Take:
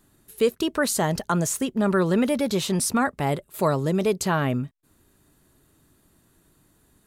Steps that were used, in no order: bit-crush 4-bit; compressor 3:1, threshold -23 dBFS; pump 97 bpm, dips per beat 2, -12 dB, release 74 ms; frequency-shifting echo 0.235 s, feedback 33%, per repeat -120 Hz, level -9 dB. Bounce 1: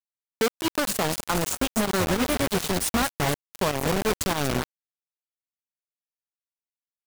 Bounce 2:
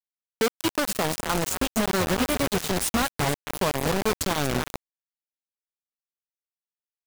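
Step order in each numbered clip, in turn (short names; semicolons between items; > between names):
compressor > frequency-shifting echo > bit-crush > pump; pump > frequency-shifting echo > compressor > bit-crush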